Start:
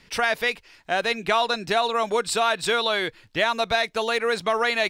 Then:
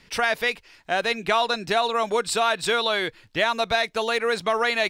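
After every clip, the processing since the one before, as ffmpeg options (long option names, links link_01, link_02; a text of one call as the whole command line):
ffmpeg -i in.wav -af anull out.wav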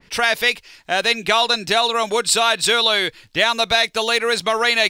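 ffmpeg -i in.wav -af "adynamicequalizer=threshold=0.0141:dfrequency=2300:dqfactor=0.7:tfrequency=2300:tqfactor=0.7:attack=5:release=100:ratio=0.375:range=4:mode=boostabove:tftype=highshelf,volume=3dB" out.wav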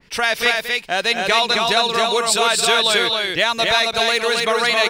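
ffmpeg -i in.wav -af "aecho=1:1:221.6|268.2:0.282|0.708,volume=-1dB" out.wav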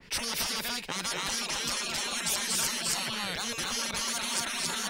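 ffmpeg -i in.wav -filter_complex "[0:a]afftfilt=real='re*lt(hypot(re,im),0.126)':imag='im*lt(hypot(re,im),0.126)':win_size=1024:overlap=0.75,acrossover=split=160|1800|3900[link_01][link_02][link_03][link_04];[link_03]alimiter=level_in=8.5dB:limit=-24dB:level=0:latency=1,volume=-8.5dB[link_05];[link_01][link_02][link_05][link_04]amix=inputs=4:normalize=0" out.wav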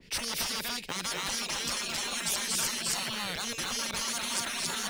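ffmpeg -i in.wav -filter_complex "[0:a]acrossover=split=680|1800[link_01][link_02][link_03];[link_01]acompressor=mode=upward:threshold=-59dB:ratio=2.5[link_04];[link_02]acrusher=bits=6:mix=0:aa=0.000001[link_05];[link_04][link_05][link_03]amix=inputs=3:normalize=0,volume=-1dB" out.wav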